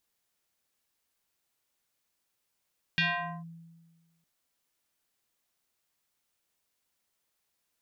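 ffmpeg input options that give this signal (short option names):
-f lavfi -i "aevalsrc='0.0794*pow(10,-3*t/1.46)*sin(2*PI*166*t+4*clip(1-t/0.46,0,1)*sin(2*PI*5.23*166*t))':d=1.26:s=44100"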